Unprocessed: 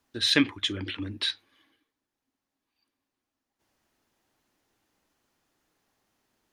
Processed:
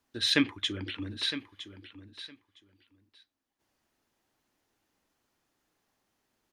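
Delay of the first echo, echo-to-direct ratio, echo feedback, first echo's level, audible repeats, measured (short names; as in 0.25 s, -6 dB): 0.961 s, -12.5 dB, 15%, -12.5 dB, 2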